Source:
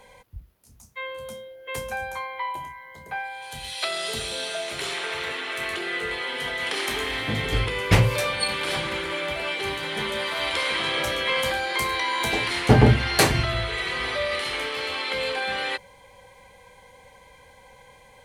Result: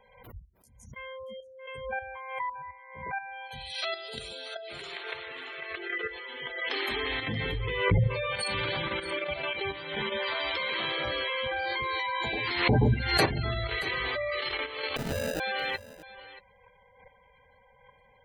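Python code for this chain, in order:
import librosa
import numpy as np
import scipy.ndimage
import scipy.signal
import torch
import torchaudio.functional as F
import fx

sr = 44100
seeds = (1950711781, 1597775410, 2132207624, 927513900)

y = fx.spec_gate(x, sr, threshold_db=-15, keep='strong')
y = fx.level_steps(y, sr, step_db=10)
y = fx.sample_hold(y, sr, seeds[0], rate_hz=1100.0, jitter_pct=0, at=(14.96, 15.4))
y = y + 10.0 ** (-17.0 / 20.0) * np.pad(y, (int(629 * sr / 1000.0), 0))[:len(y)]
y = fx.pre_swell(y, sr, db_per_s=70.0)
y = F.gain(torch.from_numpy(y), -1.5).numpy()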